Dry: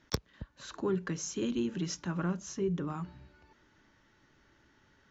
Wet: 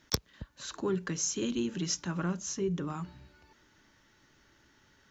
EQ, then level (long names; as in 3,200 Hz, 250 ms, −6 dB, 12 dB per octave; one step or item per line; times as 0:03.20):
high-shelf EQ 3,900 Hz +10 dB
0.0 dB